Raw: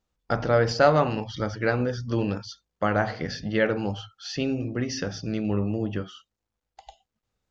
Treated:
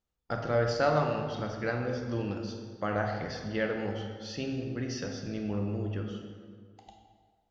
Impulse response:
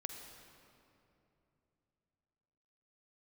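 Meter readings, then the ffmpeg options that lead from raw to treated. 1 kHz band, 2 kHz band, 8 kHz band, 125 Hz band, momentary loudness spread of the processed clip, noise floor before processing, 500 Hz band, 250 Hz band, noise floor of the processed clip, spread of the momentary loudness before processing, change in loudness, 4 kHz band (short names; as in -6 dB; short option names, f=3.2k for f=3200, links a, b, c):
-6.5 dB, -6.5 dB, n/a, -5.5 dB, 12 LU, -84 dBFS, -6.0 dB, -6.5 dB, -74 dBFS, 13 LU, -6.5 dB, -7.0 dB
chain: -filter_complex "[1:a]atrim=start_sample=2205,asetrate=74970,aresample=44100[a];[0:a][a]afir=irnorm=-1:irlink=0"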